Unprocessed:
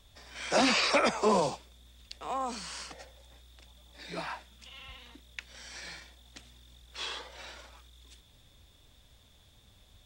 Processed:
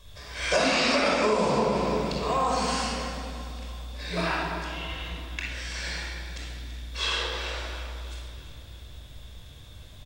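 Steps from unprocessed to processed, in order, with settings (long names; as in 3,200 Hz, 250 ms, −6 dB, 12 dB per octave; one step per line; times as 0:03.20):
on a send: repeating echo 334 ms, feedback 55%, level −15 dB
on the sum: rectangular room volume 3,200 cubic metres, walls mixed, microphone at 5.4 metres
downward compressor 12 to 1, threshold −23 dBFS, peak gain reduction 11 dB
level +3.5 dB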